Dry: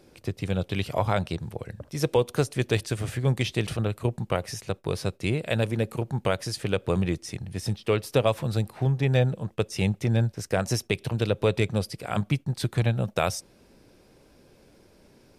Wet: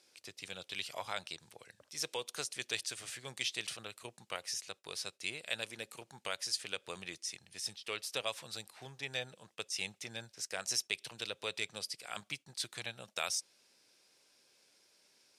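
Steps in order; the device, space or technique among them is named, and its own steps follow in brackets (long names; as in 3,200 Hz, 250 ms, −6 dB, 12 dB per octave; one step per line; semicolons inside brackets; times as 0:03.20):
piezo pickup straight into a mixer (low-pass filter 6,800 Hz 12 dB per octave; first difference)
level +3.5 dB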